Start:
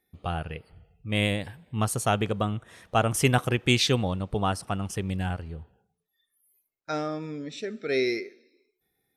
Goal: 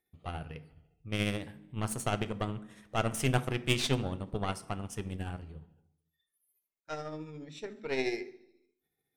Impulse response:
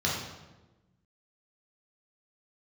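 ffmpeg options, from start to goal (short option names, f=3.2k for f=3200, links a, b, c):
-filter_complex "[0:a]aeval=exprs='0.531*(cos(1*acos(clip(val(0)/0.531,-1,1)))-cos(1*PI/2))+0.0473*(cos(3*acos(clip(val(0)/0.531,-1,1)))-cos(3*PI/2))+0.0376*(cos(8*acos(clip(val(0)/0.531,-1,1)))-cos(8*PI/2))':c=same,tremolo=f=14:d=0.45,asplit=2[a][b];[1:a]atrim=start_sample=2205,asetrate=74970,aresample=44100[c];[b][c]afir=irnorm=-1:irlink=0,volume=-17dB[d];[a][d]amix=inputs=2:normalize=0,volume=-4.5dB"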